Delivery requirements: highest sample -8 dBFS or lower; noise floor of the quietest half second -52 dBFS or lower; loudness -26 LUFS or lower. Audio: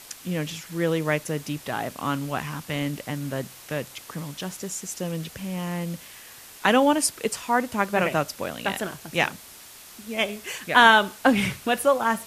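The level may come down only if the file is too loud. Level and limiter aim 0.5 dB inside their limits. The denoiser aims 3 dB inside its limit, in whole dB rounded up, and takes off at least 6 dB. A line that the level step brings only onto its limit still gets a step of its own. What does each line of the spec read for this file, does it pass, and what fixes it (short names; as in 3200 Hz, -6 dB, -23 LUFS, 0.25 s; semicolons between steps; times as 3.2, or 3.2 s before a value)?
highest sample -2.0 dBFS: fail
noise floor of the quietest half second -46 dBFS: fail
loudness -25.0 LUFS: fail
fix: denoiser 8 dB, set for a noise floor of -46 dBFS; gain -1.5 dB; limiter -8.5 dBFS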